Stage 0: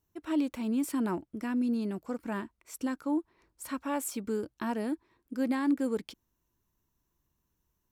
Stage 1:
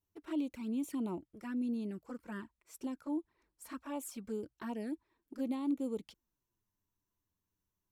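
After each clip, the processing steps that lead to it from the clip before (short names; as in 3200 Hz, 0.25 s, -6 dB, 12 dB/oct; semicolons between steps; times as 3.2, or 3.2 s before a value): envelope flanger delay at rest 10.3 ms, full sweep at -28 dBFS; gain -6 dB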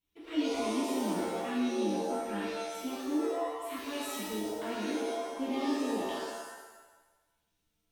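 band shelf 2800 Hz +10.5 dB 1.1 oct; shimmer reverb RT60 1.1 s, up +7 st, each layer -2 dB, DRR -7 dB; gain -4.5 dB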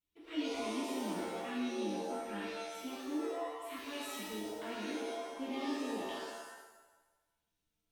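dynamic EQ 2500 Hz, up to +4 dB, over -54 dBFS, Q 0.72; gain -6.5 dB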